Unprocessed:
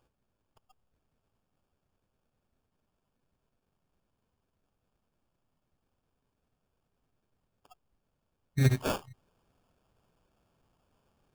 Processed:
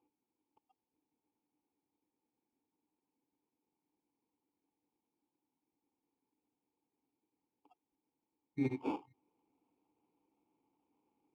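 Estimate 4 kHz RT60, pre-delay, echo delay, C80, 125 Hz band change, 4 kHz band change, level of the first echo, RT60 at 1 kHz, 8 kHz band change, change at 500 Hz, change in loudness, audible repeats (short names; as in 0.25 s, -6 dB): none, none, none, none, -18.5 dB, -19.5 dB, none, none, under -25 dB, -7.5 dB, -9.5 dB, none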